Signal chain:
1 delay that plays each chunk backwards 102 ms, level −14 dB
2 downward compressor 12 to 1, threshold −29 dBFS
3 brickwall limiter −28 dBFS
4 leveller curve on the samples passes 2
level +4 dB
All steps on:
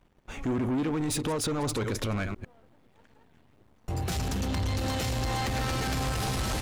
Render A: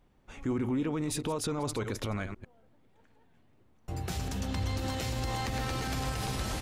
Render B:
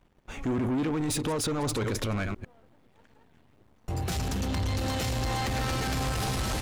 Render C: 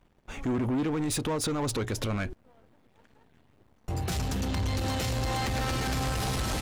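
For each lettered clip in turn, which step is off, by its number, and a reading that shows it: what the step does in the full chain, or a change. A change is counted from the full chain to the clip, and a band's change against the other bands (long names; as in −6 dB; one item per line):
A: 4, change in crest factor +3.5 dB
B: 2, average gain reduction 3.5 dB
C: 1, change in momentary loudness spread −2 LU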